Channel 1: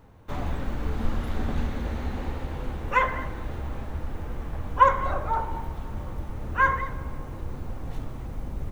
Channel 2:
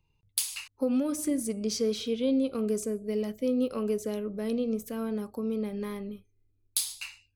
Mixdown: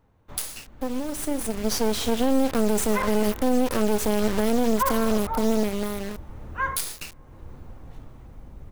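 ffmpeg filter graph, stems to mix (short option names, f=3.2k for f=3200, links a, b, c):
-filter_complex "[0:a]volume=-10dB[a];[1:a]highpass=130,highshelf=f=8.9k:g=7,acrusher=bits=4:dc=4:mix=0:aa=0.000001,volume=1dB,asplit=2[b][c];[c]apad=whole_len=384337[d];[a][d]sidechaincompress=threshold=-36dB:ratio=5:attack=11:release=486[e];[e][b]amix=inputs=2:normalize=0,dynaudnorm=f=260:g=11:m=15dB,alimiter=limit=-11.5dB:level=0:latency=1:release=72"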